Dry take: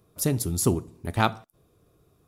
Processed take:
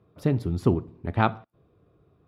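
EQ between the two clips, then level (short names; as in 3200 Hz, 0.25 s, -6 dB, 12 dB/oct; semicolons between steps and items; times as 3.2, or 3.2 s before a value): HPF 54 Hz; air absorption 380 m; +2.0 dB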